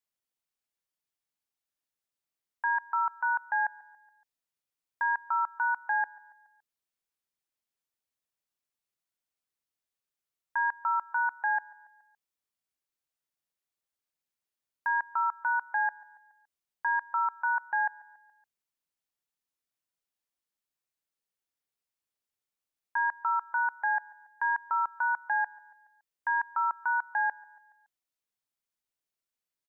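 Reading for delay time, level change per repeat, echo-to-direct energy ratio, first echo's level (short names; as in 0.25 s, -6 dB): 0.141 s, -5.0 dB, -22.0 dB, -23.5 dB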